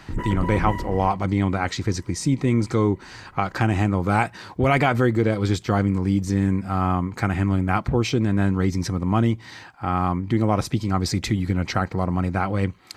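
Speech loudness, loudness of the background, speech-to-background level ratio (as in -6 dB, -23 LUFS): -23.0 LUFS, -30.5 LUFS, 7.5 dB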